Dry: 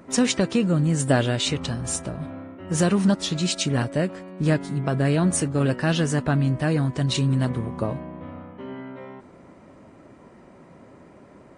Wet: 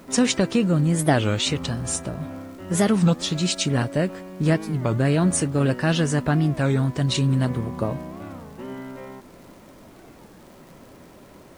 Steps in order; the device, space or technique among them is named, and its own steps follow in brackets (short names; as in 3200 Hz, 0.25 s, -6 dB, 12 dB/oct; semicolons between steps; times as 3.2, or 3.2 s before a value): warped LP (record warp 33 1/3 rpm, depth 250 cents; crackle; pink noise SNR 32 dB); gain +1 dB